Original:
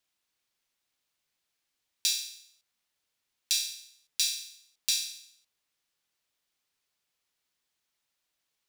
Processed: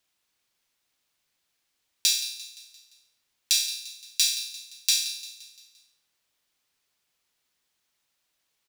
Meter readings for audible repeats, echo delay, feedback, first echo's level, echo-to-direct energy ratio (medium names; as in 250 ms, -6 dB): 4, 173 ms, 51%, -15.0 dB, -13.5 dB